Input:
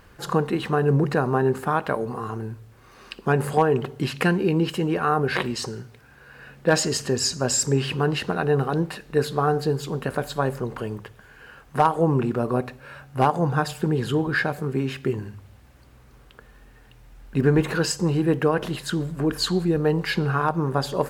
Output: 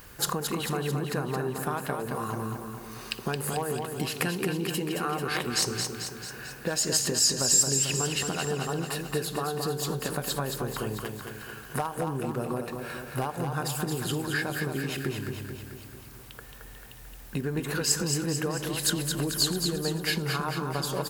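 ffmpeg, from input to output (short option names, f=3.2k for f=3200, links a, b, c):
-af "acompressor=threshold=-29dB:ratio=6,aemphasis=mode=production:type=75kf,aecho=1:1:221|442|663|884|1105|1326|1547|1768:0.531|0.308|0.179|0.104|0.0601|0.0348|0.0202|0.0117"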